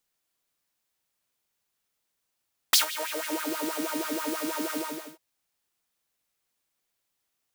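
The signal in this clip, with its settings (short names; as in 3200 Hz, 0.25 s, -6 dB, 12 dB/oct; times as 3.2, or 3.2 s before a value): synth patch with filter wobble D#4, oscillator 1 saw, interval +7 st, oscillator 2 level -9 dB, sub -22 dB, noise -1 dB, filter highpass, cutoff 380 Hz, Q 3.6, filter envelope 2.5 oct, filter decay 0.79 s, filter sustain 20%, attack 2.7 ms, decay 0.12 s, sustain -17.5 dB, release 0.43 s, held 2.02 s, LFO 6.2 Hz, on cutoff 1.3 oct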